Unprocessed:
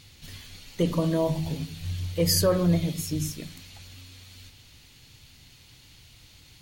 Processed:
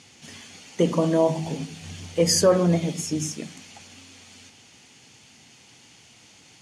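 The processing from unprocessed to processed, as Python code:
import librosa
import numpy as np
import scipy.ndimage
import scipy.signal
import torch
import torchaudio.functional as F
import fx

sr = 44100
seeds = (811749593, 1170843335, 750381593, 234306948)

y = fx.cabinet(x, sr, low_hz=200.0, low_slope=12, high_hz=9300.0, hz=(220.0, 430.0, 780.0, 4000.0, 6400.0), db=(6, 3, 6, -9, 4))
y = F.gain(torch.from_numpy(y), 4.0).numpy()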